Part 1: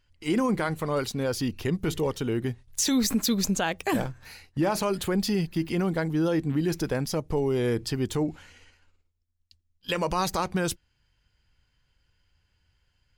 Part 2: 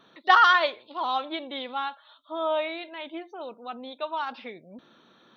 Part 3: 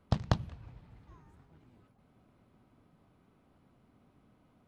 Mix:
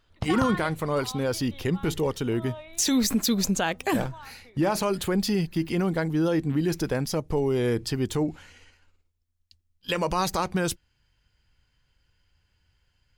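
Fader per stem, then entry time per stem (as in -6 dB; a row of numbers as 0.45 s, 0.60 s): +1.0 dB, -15.0 dB, -2.5 dB; 0.00 s, 0.00 s, 0.10 s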